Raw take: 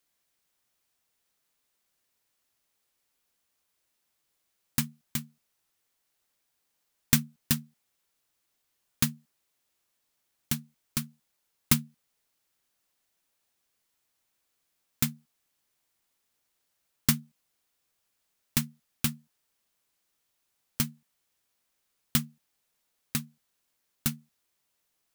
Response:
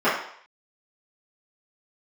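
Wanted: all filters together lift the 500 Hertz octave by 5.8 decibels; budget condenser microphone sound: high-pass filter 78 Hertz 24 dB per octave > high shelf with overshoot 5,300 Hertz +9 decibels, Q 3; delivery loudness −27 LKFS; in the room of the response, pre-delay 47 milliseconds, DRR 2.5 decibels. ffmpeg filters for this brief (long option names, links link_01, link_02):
-filter_complex "[0:a]equalizer=frequency=500:width_type=o:gain=8,asplit=2[link_01][link_02];[1:a]atrim=start_sample=2205,adelay=47[link_03];[link_02][link_03]afir=irnorm=-1:irlink=0,volume=-22.5dB[link_04];[link_01][link_04]amix=inputs=2:normalize=0,highpass=frequency=78:width=0.5412,highpass=frequency=78:width=1.3066,highshelf=frequency=5300:width_type=q:width=3:gain=9,volume=-5dB"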